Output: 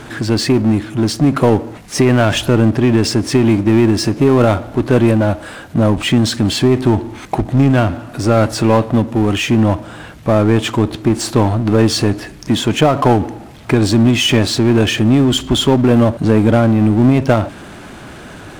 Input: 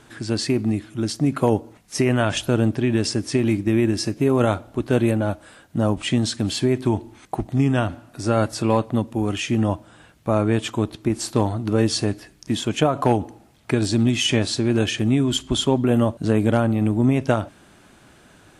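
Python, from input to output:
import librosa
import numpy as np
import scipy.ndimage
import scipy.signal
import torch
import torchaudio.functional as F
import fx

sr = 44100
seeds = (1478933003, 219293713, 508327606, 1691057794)

y = fx.high_shelf(x, sr, hz=4200.0, db=-8.0)
y = fx.power_curve(y, sr, exponent=0.7)
y = F.gain(torch.from_numpy(y), 5.0).numpy()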